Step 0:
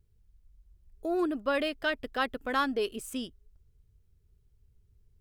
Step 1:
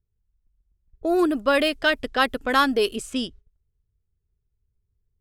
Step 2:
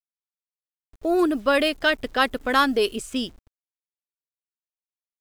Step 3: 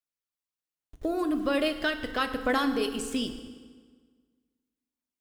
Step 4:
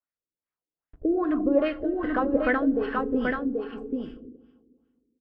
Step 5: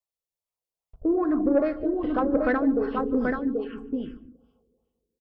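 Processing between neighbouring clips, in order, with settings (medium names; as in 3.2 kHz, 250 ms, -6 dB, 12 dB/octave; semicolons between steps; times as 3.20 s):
level-controlled noise filter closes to 1.7 kHz, open at -28 dBFS; gate -52 dBFS, range -18 dB; treble shelf 4.7 kHz +7.5 dB; trim +8.5 dB
bit crusher 9-bit
compression 2.5:1, threshold -29 dBFS, peak gain reduction 10 dB; phaser 1.2 Hz, delay 1.1 ms, feedback 31%; FDN reverb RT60 1.6 s, low-frequency decay 1.1×, high-frequency decay 0.8×, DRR 7 dB
rotary cabinet horn 1.2 Hz; delay 782 ms -4.5 dB; LFO low-pass sine 2.5 Hz 360–1900 Hz; trim +2.5 dB
touch-sensitive phaser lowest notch 270 Hz, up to 3 kHz, full sweep at -22 dBFS; saturation -14 dBFS, distortion -22 dB; delay 148 ms -23 dB; trim +2 dB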